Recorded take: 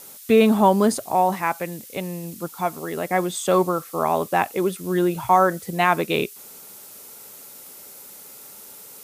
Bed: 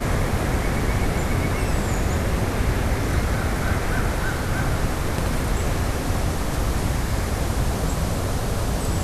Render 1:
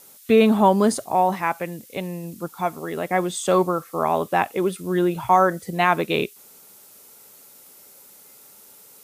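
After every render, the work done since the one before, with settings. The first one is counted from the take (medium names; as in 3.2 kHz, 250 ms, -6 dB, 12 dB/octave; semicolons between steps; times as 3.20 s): noise print and reduce 6 dB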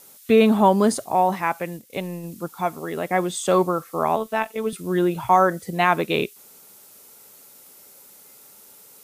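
1.73–2.30 s: transient shaper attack +1 dB, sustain -7 dB; 4.16–4.73 s: robot voice 220 Hz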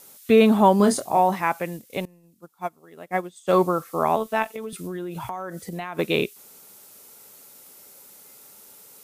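0.77–1.19 s: doubling 25 ms -6.5 dB; 2.05–3.53 s: upward expansion 2.5:1, over -31 dBFS; 4.49–5.99 s: compression 10:1, threshold -28 dBFS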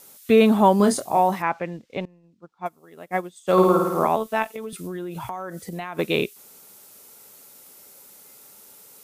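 1.42–2.66 s: distance through air 160 m; 3.52–4.07 s: flutter echo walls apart 9.2 m, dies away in 1.1 s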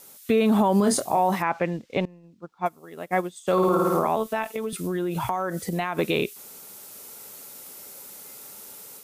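level rider gain up to 5.5 dB; peak limiter -12.5 dBFS, peak gain reduction 10 dB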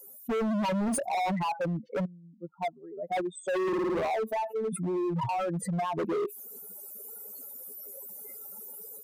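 spectral contrast enhancement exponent 3.3; hard clipper -27 dBFS, distortion -7 dB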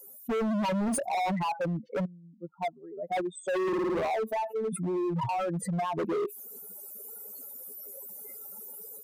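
no audible change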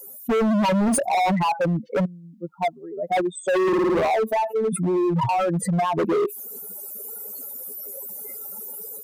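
trim +8.5 dB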